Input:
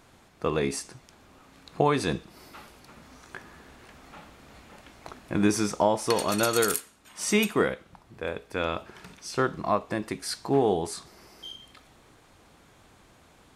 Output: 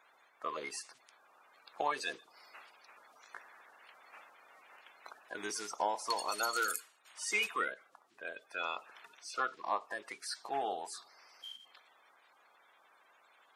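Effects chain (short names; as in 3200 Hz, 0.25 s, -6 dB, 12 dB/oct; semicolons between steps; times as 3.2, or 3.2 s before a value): bin magnitudes rounded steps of 30 dB; HPF 810 Hz 12 dB/oct; high shelf 7100 Hz -6 dB; gain -5 dB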